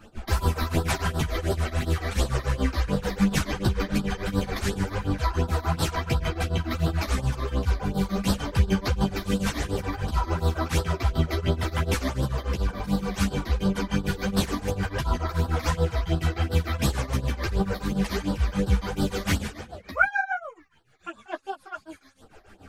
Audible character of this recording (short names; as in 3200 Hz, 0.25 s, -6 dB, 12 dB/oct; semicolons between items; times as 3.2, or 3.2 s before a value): phasing stages 12, 2.8 Hz, lowest notch 140–2300 Hz; tremolo triangle 6.9 Hz, depth 95%; a shimmering, thickened sound